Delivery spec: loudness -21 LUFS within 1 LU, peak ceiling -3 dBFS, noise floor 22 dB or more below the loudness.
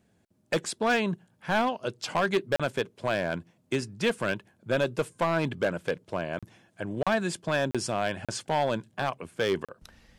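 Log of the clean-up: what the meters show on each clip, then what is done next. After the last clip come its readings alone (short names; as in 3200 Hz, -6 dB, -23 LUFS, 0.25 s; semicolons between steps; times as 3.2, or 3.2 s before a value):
clipped 1.2%; flat tops at -19.0 dBFS; dropouts 6; longest dropout 36 ms; loudness -29.5 LUFS; peak -19.0 dBFS; loudness target -21.0 LUFS
-> clip repair -19 dBFS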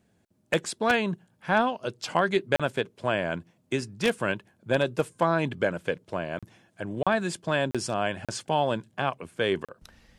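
clipped 0.0%; dropouts 6; longest dropout 36 ms
-> interpolate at 2.56/6.39/7.03/7.71/8.25/9.65, 36 ms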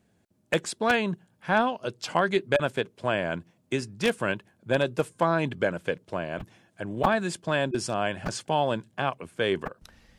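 dropouts 0; loudness -28.0 LUFS; peak -7.5 dBFS; loudness target -21.0 LUFS
-> gain +7 dB; limiter -3 dBFS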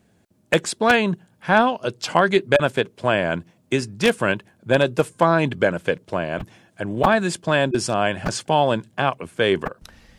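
loudness -21.0 LUFS; peak -3.0 dBFS; noise floor -61 dBFS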